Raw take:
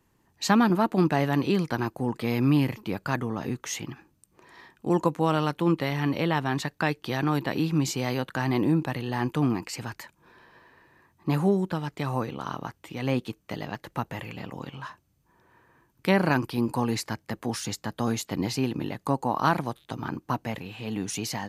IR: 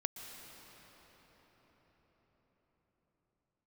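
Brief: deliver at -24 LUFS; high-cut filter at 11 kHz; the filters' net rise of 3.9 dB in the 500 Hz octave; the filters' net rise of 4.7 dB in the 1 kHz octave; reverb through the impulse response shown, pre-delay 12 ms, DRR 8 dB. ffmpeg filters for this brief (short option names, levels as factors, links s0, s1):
-filter_complex "[0:a]lowpass=11000,equalizer=f=500:t=o:g=4,equalizer=f=1000:t=o:g=4.5,asplit=2[s0][s1];[1:a]atrim=start_sample=2205,adelay=12[s2];[s1][s2]afir=irnorm=-1:irlink=0,volume=0.376[s3];[s0][s3]amix=inputs=2:normalize=0,volume=1.12"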